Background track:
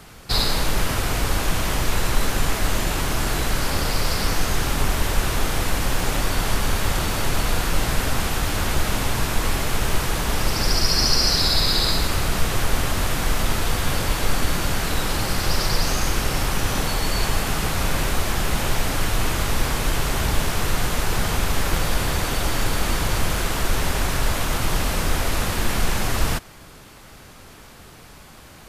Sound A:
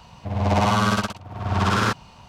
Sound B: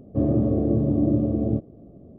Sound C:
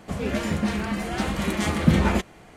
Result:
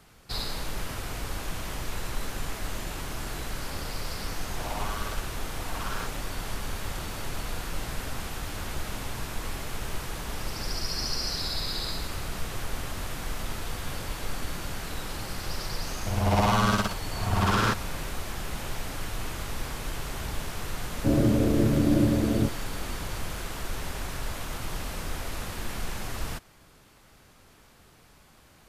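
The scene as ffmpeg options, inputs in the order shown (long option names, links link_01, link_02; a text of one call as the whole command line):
ffmpeg -i bed.wav -i cue0.wav -i cue1.wav -filter_complex "[1:a]asplit=2[link_01][link_02];[0:a]volume=-12dB[link_03];[link_01]highpass=400,atrim=end=2.28,asetpts=PTS-STARTPTS,volume=-14.5dB,afade=type=in:duration=0.004:curve=hsin,afade=type=out:start_time=2.276:duration=0.004:curve=hsin,adelay=4140[link_04];[link_02]atrim=end=2.28,asetpts=PTS-STARTPTS,volume=-3.5dB,afade=type=in:duration=0.004:curve=hsin,afade=type=out:start_time=2.276:duration=0.004:curve=hsin,adelay=15810[link_05];[2:a]atrim=end=2.18,asetpts=PTS-STARTPTS,volume=-1.5dB,afade=type=in:duration=0.004:curve=hsin,afade=type=out:start_time=2.176:duration=0.004:curve=hsin,adelay=20890[link_06];[link_03][link_04][link_05][link_06]amix=inputs=4:normalize=0" out.wav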